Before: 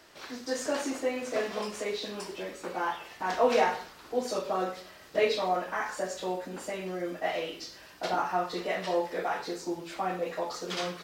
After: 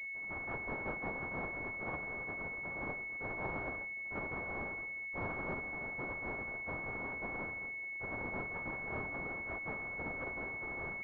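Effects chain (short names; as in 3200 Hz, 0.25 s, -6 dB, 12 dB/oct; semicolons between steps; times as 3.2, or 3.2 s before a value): 6.46–6.99 HPF 93 Hz 6 dB/oct; one-sided clip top -49 dBFS, bottom -28 dBFS; spectral gate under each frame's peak -30 dB weak; pulse-width modulation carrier 2200 Hz; gain +17.5 dB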